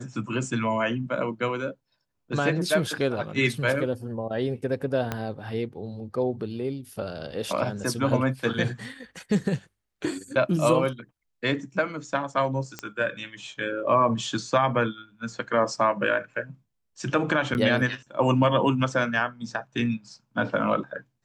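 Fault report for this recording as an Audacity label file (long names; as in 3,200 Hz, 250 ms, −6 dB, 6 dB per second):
5.120000	5.120000	click −13 dBFS
12.790000	12.790000	click −16 dBFS
17.540000	17.550000	drop-out 9.6 ms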